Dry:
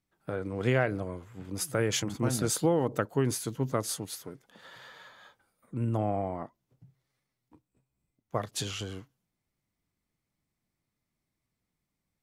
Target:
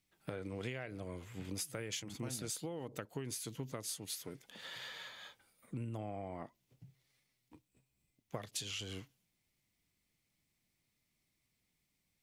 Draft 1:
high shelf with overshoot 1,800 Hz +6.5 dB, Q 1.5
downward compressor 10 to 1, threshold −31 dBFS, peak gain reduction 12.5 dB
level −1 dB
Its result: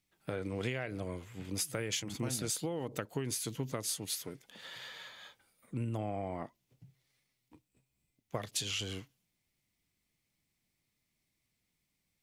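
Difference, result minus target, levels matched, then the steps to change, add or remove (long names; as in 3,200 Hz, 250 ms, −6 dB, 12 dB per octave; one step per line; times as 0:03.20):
downward compressor: peak gain reduction −6 dB
change: downward compressor 10 to 1, threshold −37.5 dBFS, peak gain reduction 18.5 dB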